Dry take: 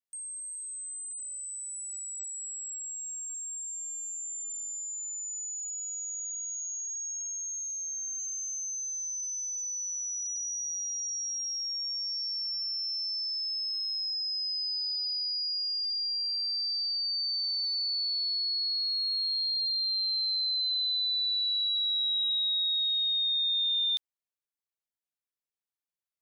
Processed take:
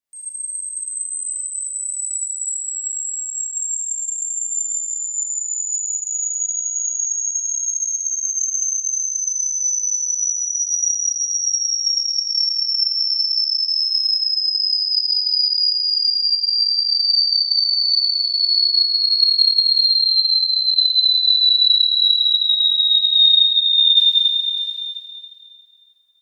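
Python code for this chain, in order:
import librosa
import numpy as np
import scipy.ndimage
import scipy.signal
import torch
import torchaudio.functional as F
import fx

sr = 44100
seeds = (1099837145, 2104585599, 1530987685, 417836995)

y = fx.echo_multitap(x, sr, ms=(186, 610), db=(-5.0, -8.5))
y = fx.rev_schroeder(y, sr, rt60_s=2.3, comb_ms=27, drr_db=-9.0)
y = F.gain(torch.from_numpy(y), 2.5).numpy()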